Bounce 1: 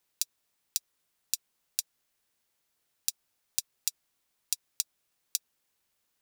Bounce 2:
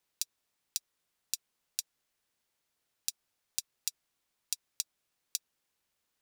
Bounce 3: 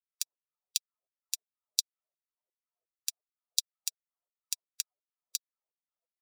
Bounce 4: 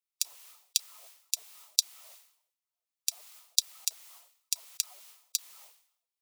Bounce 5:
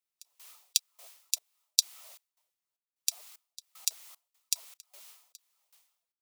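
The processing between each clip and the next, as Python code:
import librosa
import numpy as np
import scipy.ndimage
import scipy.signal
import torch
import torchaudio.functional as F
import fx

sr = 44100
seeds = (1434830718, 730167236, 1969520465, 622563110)

y1 = fx.high_shelf(x, sr, hz=9300.0, db=-5.0)
y1 = y1 * 10.0 ** (-2.0 / 20.0)
y2 = fx.bin_expand(y1, sr, power=2.0)
y2 = fx.filter_lfo_highpass(y2, sr, shape='saw_down', hz=2.8, low_hz=440.0, high_hz=4200.0, q=2.9)
y2 = fx.upward_expand(y2, sr, threshold_db=-47.0, expansion=1.5)
y2 = y2 * 10.0 ** (4.5 / 20.0)
y3 = scipy.signal.sosfilt(scipy.signal.butter(2, 890.0, 'highpass', fs=sr, output='sos'), y2)
y3 = fx.peak_eq(y3, sr, hz=1600.0, db=-7.5, octaves=0.61)
y3 = fx.sustainer(y3, sr, db_per_s=94.0)
y3 = y3 * 10.0 ** (3.5 / 20.0)
y4 = fx.step_gate(y3, sr, bpm=76, pattern='x.xx.xx..x', floor_db=-24.0, edge_ms=4.5)
y4 = y4 * 10.0 ** (1.0 / 20.0)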